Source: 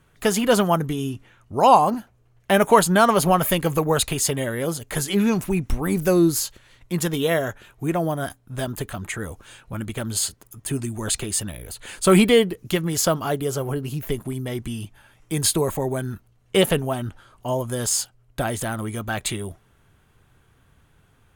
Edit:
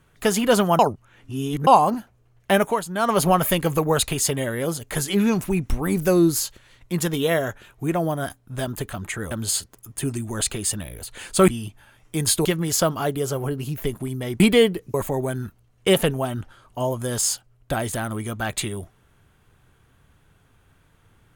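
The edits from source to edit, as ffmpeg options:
ffmpeg -i in.wav -filter_complex "[0:a]asplit=10[link_01][link_02][link_03][link_04][link_05][link_06][link_07][link_08][link_09][link_10];[link_01]atrim=end=0.792[link_11];[link_02]atrim=start=0.788:end=1.672,asetpts=PTS-STARTPTS,areverse[link_12];[link_03]atrim=start=1.668:end=2.79,asetpts=PTS-STARTPTS,afade=type=out:start_time=0.862:duration=0.26:silence=0.251189[link_13];[link_04]atrim=start=2.79:end=2.94,asetpts=PTS-STARTPTS,volume=-12dB[link_14];[link_05]atrim=start=2.94:end=9.312,asetpts=PTS-STARTPTS,afade=type=in:duration=0.26:silence=0.251189[link_15];[link_06]atrim=start=9.988:end=12.162[link_16];[link_07]atrim=start=14.648:end=15.622[link_17];[link_08]atrim=start=12.698:end=14.652[link_18];[link_09]atrim=start=12.158:end=12.702[link_19];[link_10]atrim=start=15.618[link_20];[link_11][link_12]acrossfade=duration=0.004:curve1=hsin:curve2=hsin[link_21];[link_13][link_14][link_15]concat=n=3:v=0:a=1[link_22];[link_21][link_22]acrossfade=duration=0.004:curve1=hsin:curve2=hsin[link_23];[link_23][link_16]acrossfade=duration=0.004:curve1=hsin:curve2=hsin[link_24];[link_24][link_17]acrossfade=duration=0.004:curve1=hsin:curve2=hsin[link_25];[link_25][link_18]acrossfade=duration=0.004:curve1=hsin:curve2=hsin[link_26];[link_26][link_19]acrossfade=duration=0.004:curve1=hsin:curve2=hsin[link_27];[link_27][link_20]acrossfade=duration=0.004:curve1=hsin:curve2=hsin" out.wav

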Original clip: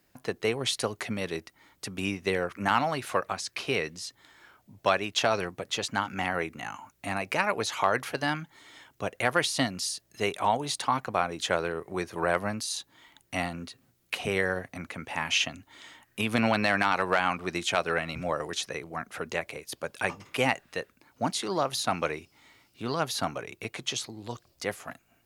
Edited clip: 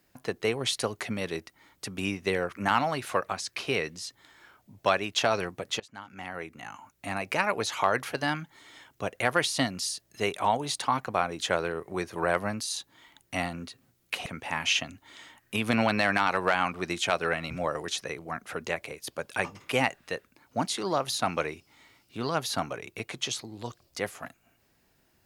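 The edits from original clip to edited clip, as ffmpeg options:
ffmpeg -i in.wav -filter_complex "[0:a]asplit=3[link_01][link_02][link_03];[link_01]atrim=end=5.8,asetpts=PTS-STARTPTS,afade=type=out:start_time=5.796:duration=0.004:curve=hsin:silence=0.0668344[link_04];[link_02]atrim=start=5.8:end=14.262,asetpts=PTS-STARTPTS,afade=type=in:duration=1.56:silence=0.0668344[link_05];[link_03]atrim=start=14.908[link_06];[link_04][link_05]concat=n=2:v=0:a=1[link_07];[link_07][link_06]acrossfade=duration=0.004:curve1=hsin:curve2=hsin" out.wav

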